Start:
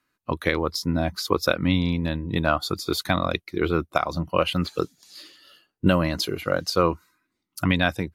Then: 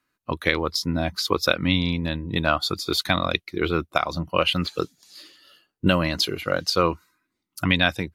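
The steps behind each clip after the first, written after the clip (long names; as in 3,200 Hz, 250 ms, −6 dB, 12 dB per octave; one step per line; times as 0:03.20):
dynamic equaliser 3,300 Hz, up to +7 dB, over −39 dBFS, Q 0.72
level −1 dB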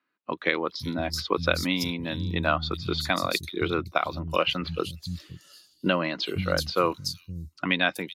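three-band delay without the direct sound mids, highs, lows 380/520 ms, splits 170/4,400 Hz
level −2.5 dB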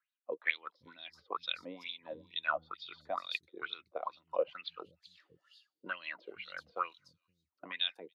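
LFO wah 2.2 Hz 460–3,700 Hz, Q 7.6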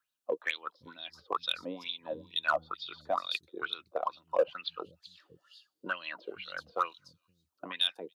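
parametric band 2,100 Hz −10.5 dB 0.44 octaves
in parallel at −3 dB: hard clipping −29 dBFS, distortion −11 dB
on the sum: level +2 dB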